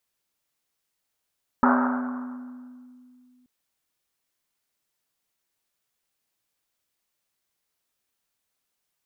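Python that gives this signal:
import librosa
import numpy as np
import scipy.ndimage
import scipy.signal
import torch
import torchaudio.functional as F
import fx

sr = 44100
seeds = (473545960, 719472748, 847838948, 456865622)

y = fx.risset_drum(sr, seeds[0], length_s=1.83, hz=250.0, decay_s=2.8, noise_hz=1100.0, noise_width_hz=800.0, noise_pct=40)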